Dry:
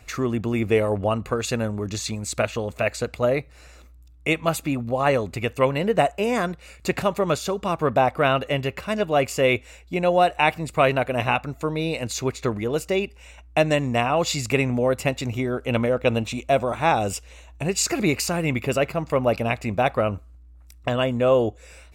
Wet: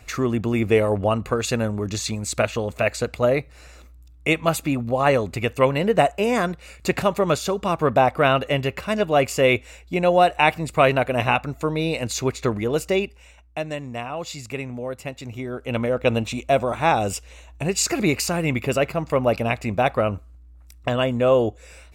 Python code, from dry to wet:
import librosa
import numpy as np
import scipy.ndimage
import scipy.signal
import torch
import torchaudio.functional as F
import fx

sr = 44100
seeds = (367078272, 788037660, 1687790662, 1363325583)

y = fx.gain(x, sr, db=fx.line((12.96, 2.0), (13.59, -9.0), (15.1, -9.0), (16.07, 1.0)))